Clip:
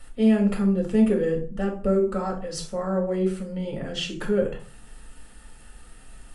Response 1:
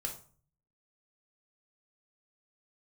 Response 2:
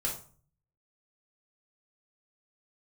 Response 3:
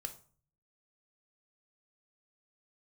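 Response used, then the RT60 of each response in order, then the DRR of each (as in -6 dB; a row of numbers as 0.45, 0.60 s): 1; 0.45, 0.45, 0.45 s; 0.5, -3.5, 6.0 dB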